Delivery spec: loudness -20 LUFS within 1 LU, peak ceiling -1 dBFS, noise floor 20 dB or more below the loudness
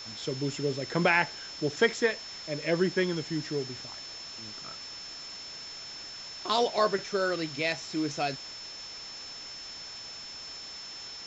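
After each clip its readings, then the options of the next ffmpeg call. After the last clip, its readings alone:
steady tone 5300 Hz; tone level -41 dBFS; noise floor -43 dBFS; noise floor target -52 dBFS; loudness -31.5 LUFS; peak -11.0 dBFS; loudness target -20.0 LUFS
-> -af "bandreject=f=5.3k:w=30"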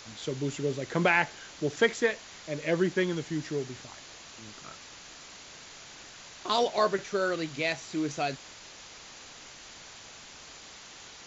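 steady tone none; noise floor -49 dBFS; noise floor target -50 dBFS
-> -af "afftdn=nr=6:nf=-49"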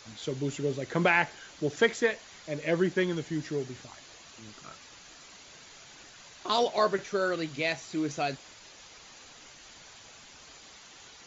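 noise floor -52 dBFS; loudness -29.5 LUFS; peak -11.0 dBFS; loudness target -20.0 LUFS
-> -af "volume=9.5dB"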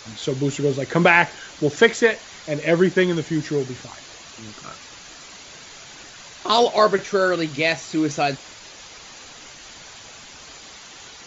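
loudness -20.0 LUFS; peak -1.5 dBFS; noise floor -43 dBFS

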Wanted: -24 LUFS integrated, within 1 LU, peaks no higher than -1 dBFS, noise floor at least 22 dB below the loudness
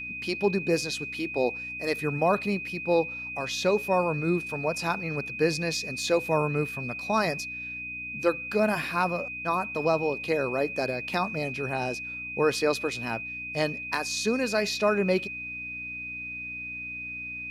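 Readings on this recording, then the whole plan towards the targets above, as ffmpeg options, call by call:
hum 60 Hz; harmonics up to 300 Hz; hum level -48 dBFS; steady tone 2500 Hz; tone level -34 dBFS; loudness -28.0 LUFS; peak -12.5 dBFS; loudness target -24.0 LUFS
-> -af "bandreject=f=60:t=h:w=4,bandreject=f=120:t=h:w=4,bandreject=f=180:t=h:w=4,bandreject=f=240:t=h:w=4,bandreject=f=300:t=h:w=4"
-af "bandreject=f=2.5k:w=30"
-af "volume=4dB"

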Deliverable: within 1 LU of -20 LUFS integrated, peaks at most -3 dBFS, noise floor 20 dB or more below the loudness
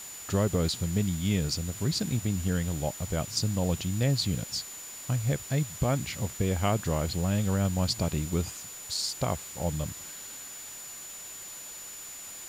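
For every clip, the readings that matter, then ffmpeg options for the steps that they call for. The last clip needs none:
steady tone 7000 Hz; tone level -42 dBFS; noise floor -43 dBFS; noise floor target -51 dBFS; loudness -30.5 LUFS; peak -14.5 dBFS; loudness target -20.0 LUFS
-> -af "bandreject=f=7k:w=30"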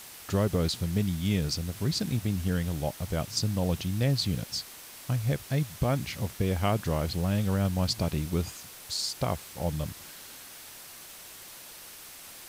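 steady tone none; noise floor -47 dBFS; noise floor target -50 dBFS
-> -af "afftdn=nr=6:nf=-47"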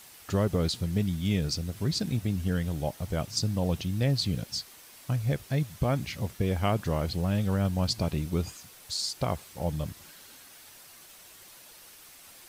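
noise floor -52 dBFS; loudness -30.0 LUFS; peak -15.0 dBFS; loudness target -20.0 LUFS
-> -af "volume=10dB"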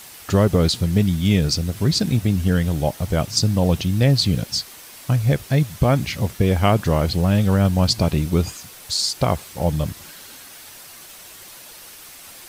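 loudness -20.0 LUFS; peak -5.0 dBFS; noise floor -42 dBFS

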